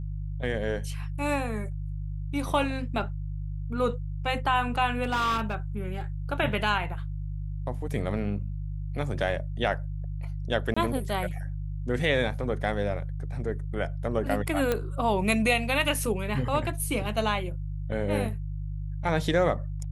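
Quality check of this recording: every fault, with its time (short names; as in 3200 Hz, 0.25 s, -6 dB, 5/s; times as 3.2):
hum 50 Hz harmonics 3 -33 dBFS
5.03–5.55 clipped -22.5 dBFS
10.74–10.77 gap 25 ms
14.72 pop -12 dBFS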